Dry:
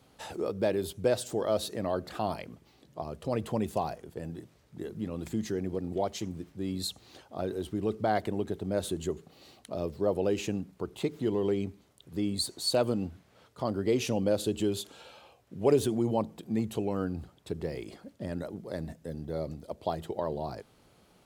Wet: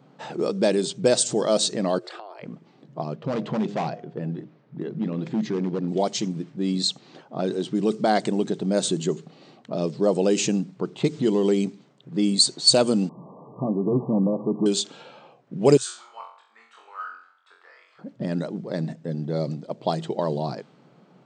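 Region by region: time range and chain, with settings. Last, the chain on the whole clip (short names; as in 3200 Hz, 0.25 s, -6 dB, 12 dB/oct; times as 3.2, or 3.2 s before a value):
1.98–2.43 Chebyshev high-pass 340 Hz, order 6 + bell 6400 Hz -7.5 dB 0.3 oct + compressor 12:1, threshold -42 dBFS
3.14–5.88 air absorption 160 m + de-hum 101.8 Hz, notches 7 + hard clip -28.5 dBFS
13.09–14.66 delta modulation 16 kbps, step -44 dBFS + brick-wall FIR low-pass 1200 Hz
15.77–17.99 ladder high-pass 1200 Hz, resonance 70% + flutter echo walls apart 3.8 m, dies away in 0.57 s
whole clip: low-pass opened by the level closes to 1500 Hz, open at -23.5 dBFS; FFT band-pass 120–9000 Hz; tone controls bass +6 dB, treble +14 dB; gain +6.5 dB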